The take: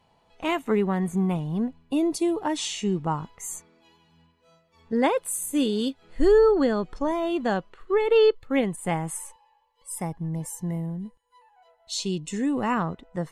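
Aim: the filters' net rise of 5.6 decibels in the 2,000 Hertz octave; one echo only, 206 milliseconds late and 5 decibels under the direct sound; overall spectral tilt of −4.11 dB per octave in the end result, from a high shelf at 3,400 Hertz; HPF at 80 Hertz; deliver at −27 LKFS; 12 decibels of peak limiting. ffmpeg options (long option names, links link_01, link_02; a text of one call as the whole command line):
ffmpeg -i in.wav -af "highpass=80,equalizer=frequency=2000:width_type=o:gain=4,highshelf=frequency=3400:gain=9,alimiter=limit=-20dB:level=0:latency=1,aecho=1:1:206:0.562,volume=1dB" out.wav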